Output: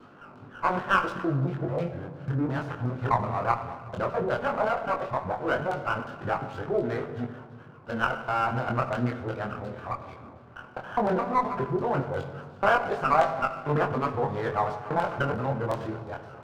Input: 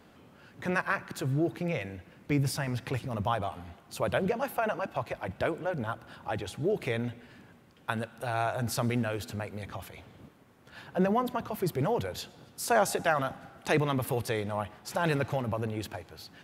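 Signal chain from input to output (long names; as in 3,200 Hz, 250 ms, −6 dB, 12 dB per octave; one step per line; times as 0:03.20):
reversed piece by piece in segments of 207 ms
high-pass filter 87 Hz
high shelf with overshoot 1,700 Hz −7 dB, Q 3
in parallel at +0.5 dB: downward compressor, threshold −35 dBFS, peak gain reduction 15.5 dB
on the sum: auto-filter low-pass saw down 2.8 Hz 780–4,200 Hz
chorus effect 0.15 Hz, delay 20 ms, depth 4.8 ms
on a send at −7.5 dB: convolution reverb RT60 1.6 s, pre-delay 8 ms
on the sum: windowed peak hold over 5 samples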